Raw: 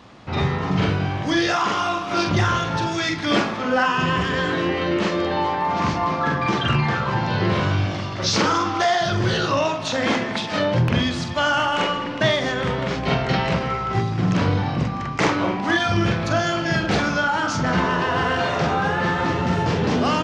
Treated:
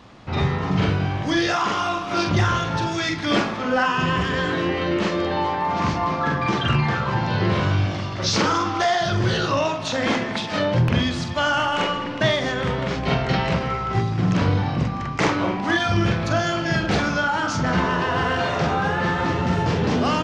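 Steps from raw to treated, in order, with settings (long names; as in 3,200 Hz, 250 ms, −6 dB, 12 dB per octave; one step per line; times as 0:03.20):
low-shelf EQ 72 Hz +6 dB
level −1 dB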